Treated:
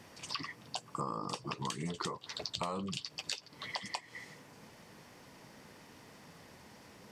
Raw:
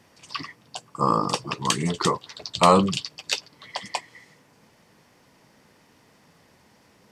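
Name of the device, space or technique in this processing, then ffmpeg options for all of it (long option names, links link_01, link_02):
serial compression, leveller first: -af "acompressor=threshold=-28dB:ratio=2,acompressor=threshold=-38dB:ratio=5,volume=2dB"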